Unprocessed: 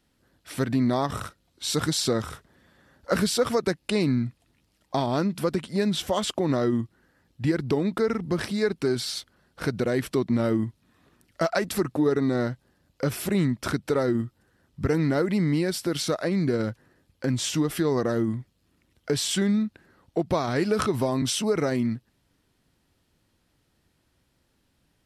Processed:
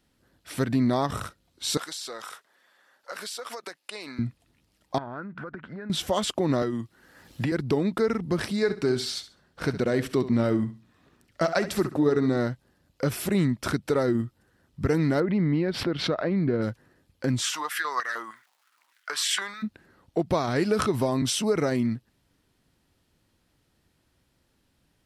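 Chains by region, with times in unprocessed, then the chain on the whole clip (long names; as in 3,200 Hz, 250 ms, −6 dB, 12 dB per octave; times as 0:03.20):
0:01.77–0:04.19: high-pass filter 740 Hz + downward compressor 12 to 1, threshold −32 dBFS
0:04.98–0:05.90: downward compressor 12 to 1, threshold −35 dBFS + low-pass with resonance 1,500 Hz, resonance Q 5.5
0:06.62–0:07.52: low-shelf EQ 420 Hz −6.5 dB + multiband upward and downward compressor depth 100%
0:08.56–0:12.37: parametric band 11,000 Hz −6.5 dB 0.54 octaves + repeating echo 68 ms, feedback 24%, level −13 dB
0:15.20–0:16.62: high-frequency loss of the air 370 metres + background raised ahead of every attack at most 91 dB per second
0:17.41–0:19.62: surface crackle 400 per second −56 dBFS + high-pass on a step sequencer 6.5 Hz 860–1,800 Hz
whole clip: no processing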